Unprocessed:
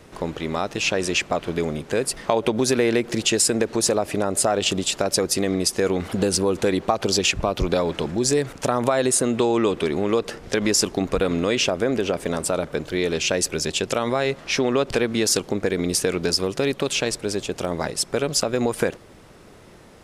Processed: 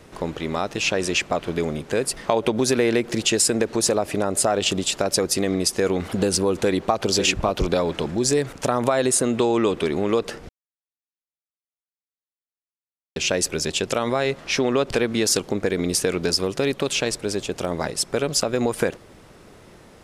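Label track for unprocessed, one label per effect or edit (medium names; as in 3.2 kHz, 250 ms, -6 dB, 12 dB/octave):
6.530000	7.110000	echo throw 550 ms, feedback 10%, level -8.5 dB
10.490000	13.160000	mute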